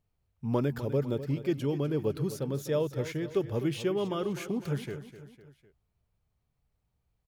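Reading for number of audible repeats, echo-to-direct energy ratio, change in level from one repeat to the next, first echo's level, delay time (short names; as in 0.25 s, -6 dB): 3, -12.0 dB, -6.0 dB, -13.0 dB, 0.252 s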